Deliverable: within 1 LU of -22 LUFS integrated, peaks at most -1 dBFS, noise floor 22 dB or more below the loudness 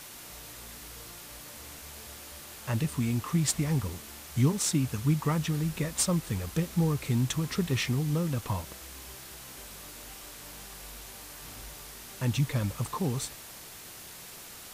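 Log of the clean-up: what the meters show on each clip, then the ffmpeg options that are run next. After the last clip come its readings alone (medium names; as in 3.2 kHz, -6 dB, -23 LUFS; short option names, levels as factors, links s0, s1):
noise floor -46 dBFS; noise floor target -52 dBFS; loudness -29.5 LUFS; peak level -13.5 dBFS; loudness target -22.0 LUFS
-> -af "afftdn=nr=6:nf=-46"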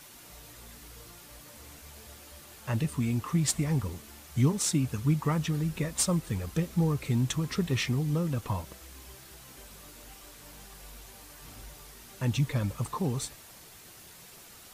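noise floor -51 dBFS; noise floor target -52 dBFS
-> -af "afftdn=nr=6:nf=-51"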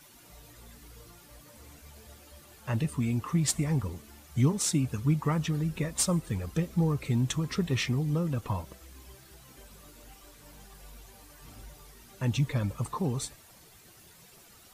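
noise floor -55 dBFS; loudness -30.0 LUFS; peak level -14.0 dBFS; loudness target -22.0 LUFS
-> -af "volume=2.51"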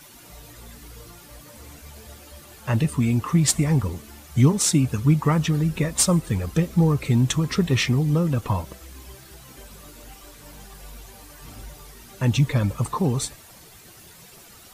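loudness -22.0 LUFS; peak level -6.0 dBFS; noise floor -47 dBFS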